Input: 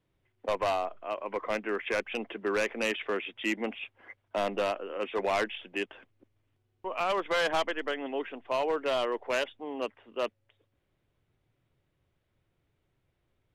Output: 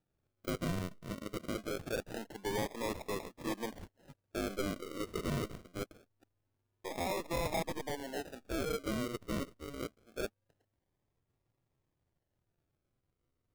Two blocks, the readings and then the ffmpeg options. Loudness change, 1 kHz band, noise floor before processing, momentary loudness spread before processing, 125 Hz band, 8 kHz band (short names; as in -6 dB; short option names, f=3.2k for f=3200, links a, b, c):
-7.5 dB, -10.0 dB, -77 dBFS, 8 LU, +10.0 dB, +1.5 dB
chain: -af "aeval=exprs='if(lt(val(0),0),0.708*val(0),val(0))':c=same,acrusher=samples=41:mix=1:aa=0.000001:lfo=1:lforange=24.6:lforate=0.24,volume=-5.5dB"